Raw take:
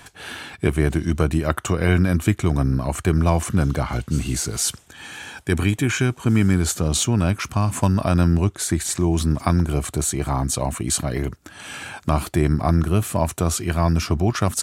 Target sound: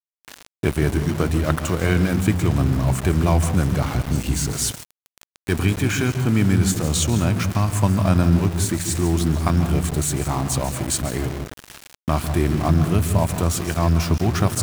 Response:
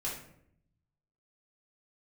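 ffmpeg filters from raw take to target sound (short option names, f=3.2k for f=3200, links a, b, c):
-filter_complex "[0:a]asplit=2[a][b];[1:a]atrim=start_sample=2205,lowshelf=f=280:g=8.5,adelay=138[c];[b][c]afir=irnorm=-1:irlink=0,volume=-14dB[d];[a][d]amix=inputs=2:normalize=0,aeval=exprs='val(0)*gte(abs(val(0)),0.0501)':c=same,volume=-1dB"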